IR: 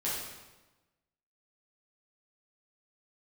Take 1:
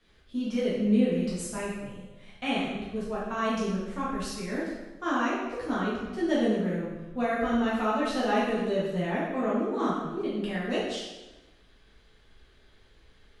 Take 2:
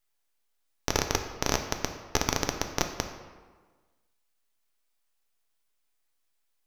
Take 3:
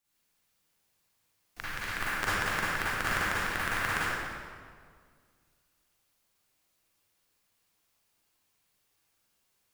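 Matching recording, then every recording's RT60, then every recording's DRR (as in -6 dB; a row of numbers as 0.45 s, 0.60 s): 1; 1.1 s, 1.5 s, 1.9 s; -8.5 dB, 5.0 dB, -10.0 dB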